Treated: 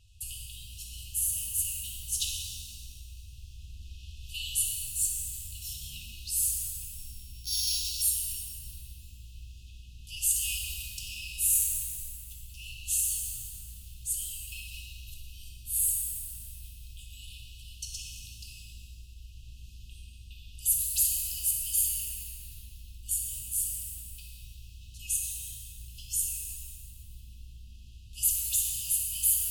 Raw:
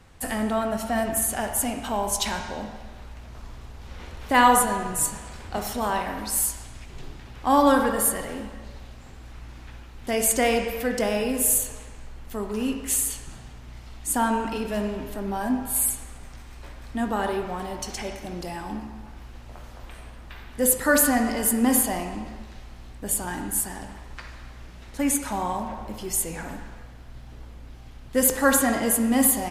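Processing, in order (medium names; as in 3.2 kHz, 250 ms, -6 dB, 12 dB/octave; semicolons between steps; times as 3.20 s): 6.95–8.02 s: sorted samples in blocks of 8 samples; FFT band-reject 120–2500 Hz; pitch-shifted reverb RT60 1.7 s, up +7 st, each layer -8 dB, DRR 1 dB; trim -5.5 dB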